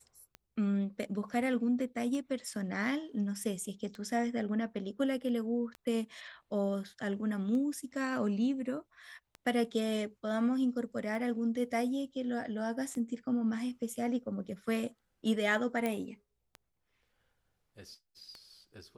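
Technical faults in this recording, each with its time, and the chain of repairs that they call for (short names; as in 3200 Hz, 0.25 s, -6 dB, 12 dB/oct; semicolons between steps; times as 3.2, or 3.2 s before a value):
tick 33 1/3 rpm -30 dBFS
15.86 pop -20 dBFS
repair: de-click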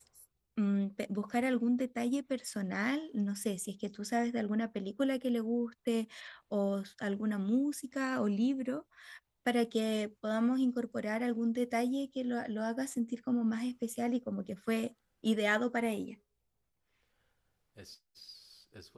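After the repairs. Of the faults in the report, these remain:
none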